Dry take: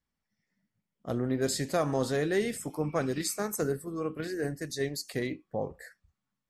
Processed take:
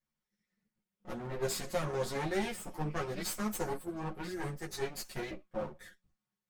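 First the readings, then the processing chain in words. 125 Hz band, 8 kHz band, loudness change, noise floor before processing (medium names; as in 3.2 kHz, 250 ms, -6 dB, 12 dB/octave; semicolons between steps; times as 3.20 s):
-5.5 dB, -5.5 dB, -6.0 dB, under -85 dBFS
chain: comb filter that takes the minimum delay 5.5 ms; three-phase chorus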